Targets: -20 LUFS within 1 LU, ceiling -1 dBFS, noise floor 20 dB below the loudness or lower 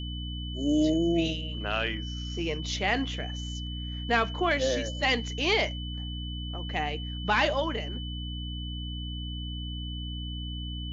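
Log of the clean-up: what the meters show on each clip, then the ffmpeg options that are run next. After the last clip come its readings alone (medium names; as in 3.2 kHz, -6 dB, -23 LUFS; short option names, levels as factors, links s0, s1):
hum 60 Hz; highest harmonic 300 Hz; hum level -33 dBFS; steady tone 3 kHz; tone level -40 dBFS; loudness -30.0 LUFS; peak level -12.5 dBFS; loudness target -20.0 LUFS
-> -af "bandreject=f=60:t=h:w=4,bandreject=f=120:t=h:w=4,bandreject=f=180:t=h:w=4,bandreject=f=240:t=h:w=4,bandreject=f=300:t=h:w=4"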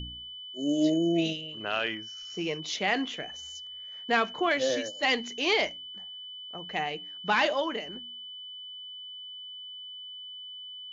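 hum not found; steady tone 3 kHz; tone level -40 dBFS
-> -af "bandreject=f=3000:w=30"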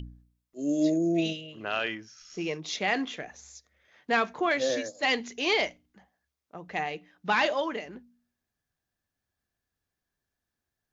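steady tone not found; loudness -29.0 LUFS; peak level -13.0 dBFS; loudness target -20.0 LUFS
-> -af "volume=2.82"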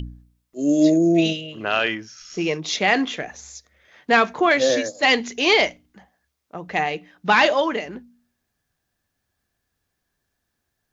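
loudness -20.0 LUFS; peak level -4.0 dBFS; noise floor -77 dBFS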